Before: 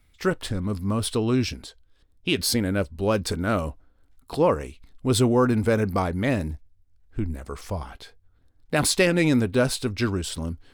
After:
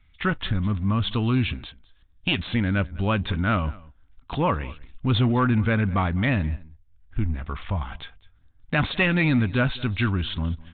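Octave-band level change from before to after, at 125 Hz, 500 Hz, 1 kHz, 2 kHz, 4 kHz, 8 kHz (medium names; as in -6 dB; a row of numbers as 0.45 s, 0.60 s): +4.0 dB, -7.0 dB, +1.5 dB, +3.0 dB, -1.0 dB, under -40 dB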